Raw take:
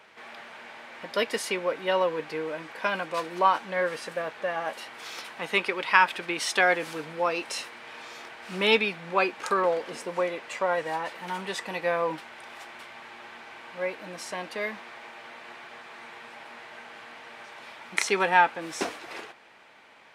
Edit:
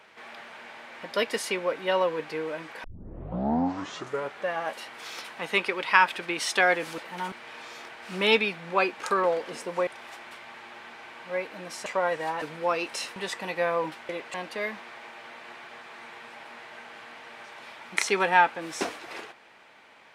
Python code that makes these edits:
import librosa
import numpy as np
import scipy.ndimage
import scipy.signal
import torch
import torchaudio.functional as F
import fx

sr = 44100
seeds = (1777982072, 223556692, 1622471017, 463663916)

y = fx.edit(x, sr, fx.tape_start(start_s=2.84, length_s=1.62),
    fx.swap(start_s=6.98, length_s=0.74, other_s=11.08, other_length_s=0.34),
    fx.swap(start_s=10.27, length_s=0.25, other_s=12.35, other_length_s=1.99), tone=tone)